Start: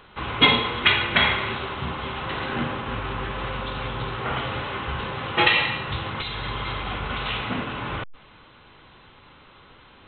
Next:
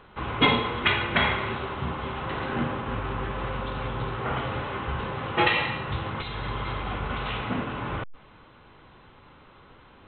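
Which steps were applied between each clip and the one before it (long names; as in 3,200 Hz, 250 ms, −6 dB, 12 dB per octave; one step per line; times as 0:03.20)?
high-shelf EQ 2,600 Hz −11.5 dB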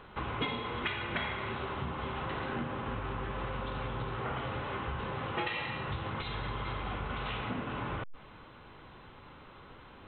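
downward compressor 4 to 1, threshold −34 dBFS, peak gain reduction 16 dB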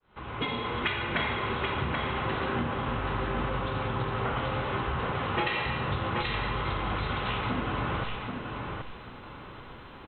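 fade in at the beginning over 0.62 s
repeating echo 781 ms, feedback 22%, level −5 dB
level +5 dB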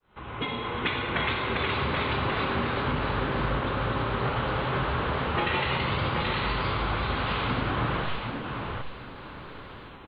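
delay with pitch and tempo change per echo 464 ms, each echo +1 semitone, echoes 3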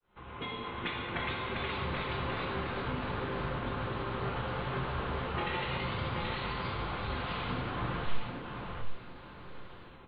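convolution reverb RT60 0.35 s, pre-delay 6 ms, DRR 5.5 dB
level −9 dB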